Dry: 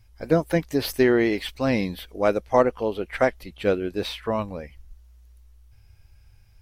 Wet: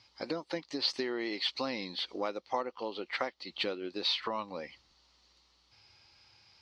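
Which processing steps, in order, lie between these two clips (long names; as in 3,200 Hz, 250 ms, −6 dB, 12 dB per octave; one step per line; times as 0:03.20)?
downward compressor 5 to 1, threshold −35 dBFS, peak gain reduction 20 dB
loudspeaker in its box 420–5,300 Hz, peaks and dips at 440 Hz −8 dB, 650 Hz −9 dB, 1,600 Hz −9 dB, 2,400 Hz −4 dB, 4,400 Hz +9 dB
level +8.5 dB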